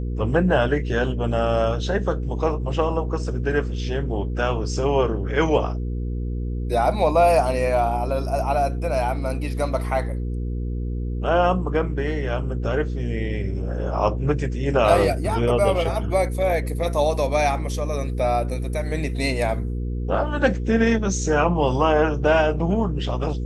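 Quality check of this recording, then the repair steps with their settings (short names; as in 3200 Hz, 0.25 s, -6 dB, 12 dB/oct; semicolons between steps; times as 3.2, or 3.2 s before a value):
hum 60 Hz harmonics 8 -26 dBFS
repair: de-hum 60 Hz, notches 8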